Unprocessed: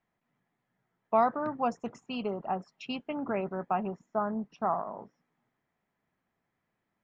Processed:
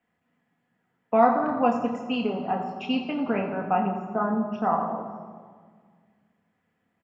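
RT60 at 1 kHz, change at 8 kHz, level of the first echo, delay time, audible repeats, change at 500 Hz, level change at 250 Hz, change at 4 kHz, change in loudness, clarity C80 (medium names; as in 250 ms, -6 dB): 1.6 s, no reading, -12.5 dB, 86 ms, 3, +6.0 dB, +9.0 dB, +7.5 dB, +6.5 dB, 7.5 dB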